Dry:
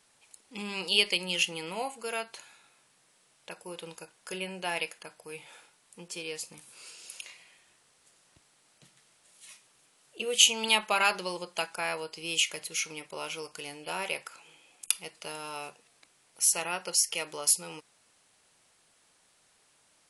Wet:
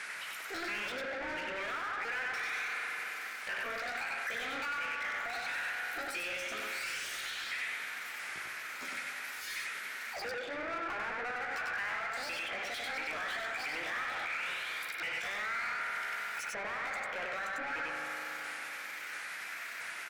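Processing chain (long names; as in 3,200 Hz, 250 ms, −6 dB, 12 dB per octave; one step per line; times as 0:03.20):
pitch shifter swept by a sawtooth +10 semitones, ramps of 683 ms
treble cut that deepens with the level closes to 520 Hz, closed at −26 dBFS
downward compressor 6 to 1, threshold −48 dBFS, peak gain reduction 17.5 dB
high-shelf EQ 5,800 Hz −6 dB
single-tap delay 97 ms −4 dB
spring reverb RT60 3 s, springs 39 ms, chirp 70 ms, DRR 7 dB
mid-hump overdrive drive 33 dB, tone 7,000 Hz, clips at −29 dBFS
flat-topped bell 1,800 Hz +12.5 dB 1.1 octaves
brickwall limiter −24 dBFS, peak gain reduction 5 dB
level −5 dB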